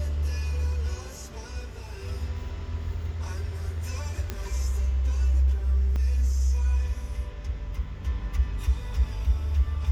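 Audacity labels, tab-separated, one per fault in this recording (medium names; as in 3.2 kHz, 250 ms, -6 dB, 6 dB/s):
4.300000	4.300000	pop -16 dBFS
5.960000	5.960000	dropout 2.8 ms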